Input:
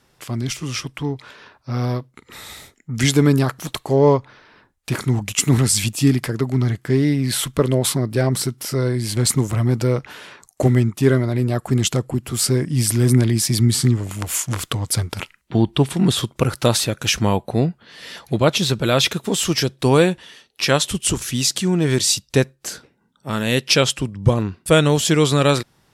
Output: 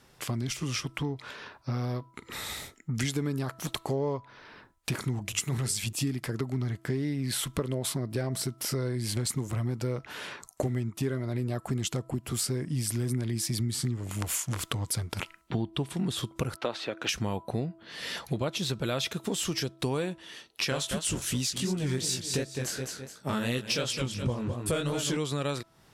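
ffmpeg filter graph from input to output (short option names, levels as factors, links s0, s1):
-filter_complex "[0:a]asettb=1/sr,asplit=3[s0][s1][s2];[s0]atrim=end=5.254[s3];[s1]atrim=start=5.25:end=5.93,asetpts=PTS-STARTPTS,afade=t=in:d=0.004:c=qsin,afade=t=out:st=0.676:d=0.004:c=qsin,equalizer=f=280:t=o:w=0.43:g=-9,bandreject=f=50:t=h:w=6,bandreject=f=100:t=h:w=6,bandreject=f=150:t=h:w=6,bandreject=f=200:t=h:w=6,bandreject=f=250:t=h:w=6,bandreject=f=300:t=h:w=6,bandreject=f=350:t=h:w=6,bandreject=f=400:t=h:w=6,bandreject=f=450:t=h:w=6[s4];[s2]atrim=start=5.926[s5];[s3][s4]acrossfade=d=0.004:c1=hsin:c2=qsin[s6];[s6][s5]acrossfade=d=0.004:c1=qsin:c2=hsin,asettb=1/sr,asplit=3[s7][s8][s9];[s7]atrim=end=16.564[s10];[s8]atrim=start=16.56:end=17.09,asetpts=PTS-STARTPTS,afade=t=in:d=0.004:c=qsin,afade=t=out:st=0.526:d=0.004:c=qsin,acrossover=split=8300[s11][s12];[s12]acompressor=threshold=0.0251:ratio=4:attack=1:release=60[s13];[s11][s13]amix=inputs=2:normalize=0,acrossover=split=260 3900:gain=0.0891 1 0.0794[s14][s15][s16];[s14][s15][s16]amix=inputs=3:normalize=0[s17];[s9]atrim=start=17.086[s18];[s10][s17]acrossfade=d=0.004:c1=hsin:c2=qsin[s19];[s19][s18]acrossfade=d=0.004:c1=qsin:c2=hsin,asettb=1/sr,asplit=3[s20][s21][s22];[s20]atrim=end=20.704[s23];[s21]atrim=start=20.7:end=25.17,asetpts=PTS-STARTPTS,afade=t=in:d=0.004:c=qsin,afade=t=out:st=4.466:d=0.004:c=qsin,aecho=1:1:210|420|630:0.299|0.0925|0.0287,atrim=end_sample=197127,acontrast=25,flanger=delay=15.5:depth=7.6:speed=2.8[s24];[s22]atrim=start=25.166[s25];[s23][s24]acrossfade=d=0.004:c1=hsin:c2=qsin[s26];[s26][s25]acrossfade=d=0.004:c1=qsin:c2=hsin,bandreject=f=329.1:t=h:w=4,bandreject=f=658.2:t=h:w=4,bandreject=f=987.3:t=h:w=4,bandreject=f=1316.4:t=h:w=4,acompressor=threshold=0.0355:ratio=5"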